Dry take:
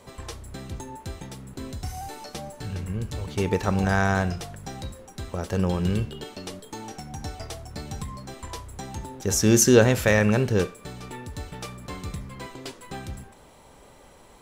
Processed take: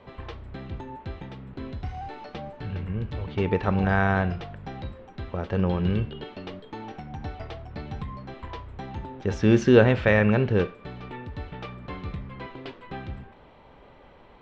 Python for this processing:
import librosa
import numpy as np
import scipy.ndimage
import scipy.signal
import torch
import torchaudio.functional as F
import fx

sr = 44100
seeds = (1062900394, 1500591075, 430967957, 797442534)

y = scipy.signal.sosfilt(scipy.signal.butter(4, 3300.0, 'lowpass', fs=sr, output='sos'), x)